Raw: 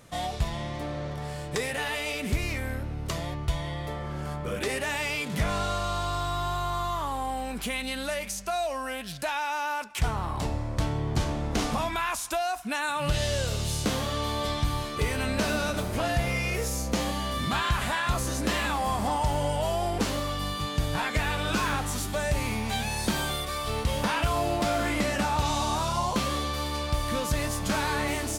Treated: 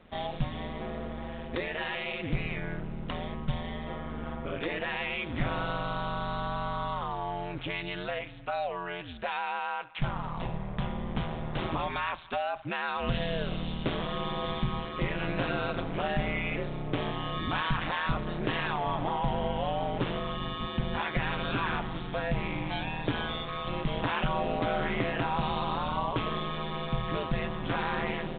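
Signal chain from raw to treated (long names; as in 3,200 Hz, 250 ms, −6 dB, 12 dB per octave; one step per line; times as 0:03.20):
0:09.59–0:11.62: parametric band 250 Hz −7.5 dB 1.3 octaves
ring modulation 83 Hz
A-law companding 64 kbit/s 8,000 Hz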